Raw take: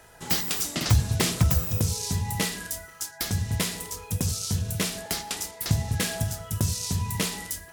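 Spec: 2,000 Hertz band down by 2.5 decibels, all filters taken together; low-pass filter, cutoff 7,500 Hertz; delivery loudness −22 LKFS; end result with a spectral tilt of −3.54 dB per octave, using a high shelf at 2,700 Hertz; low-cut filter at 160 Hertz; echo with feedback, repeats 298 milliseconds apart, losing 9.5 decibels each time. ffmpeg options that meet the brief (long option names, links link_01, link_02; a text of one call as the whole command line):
ffmpeg -i in.wav -af "highpass=160,lowpass=7500,equalizer=frequency=2000:width_type=o:gain=-5.5,highshelf=frequency=2700:gain=5.5,aecho=1:1:298|596|894|1192:0.335|0.111|0.0365|0.012,volume=6dB" out.wav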